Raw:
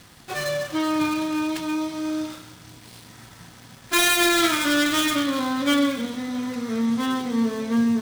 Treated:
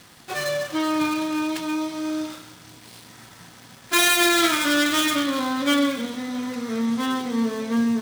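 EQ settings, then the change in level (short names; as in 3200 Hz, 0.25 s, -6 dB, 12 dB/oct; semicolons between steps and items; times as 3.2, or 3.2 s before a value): low shelf 110 Hz -10.5 dB; +1.0 dB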